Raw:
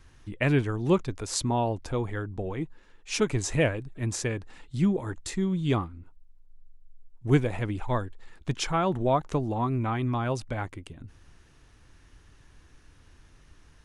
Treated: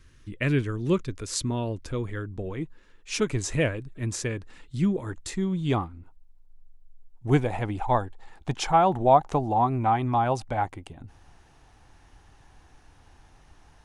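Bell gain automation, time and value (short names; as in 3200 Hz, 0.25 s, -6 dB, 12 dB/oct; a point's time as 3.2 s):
bell 790 Hz 0.53 oct
2.02 s -14 dB
2.62 s -5 dB
4.94 s -5 dB
5.87 s +7 dB
7.26 s +7 dB
7.78 s +13.5 dB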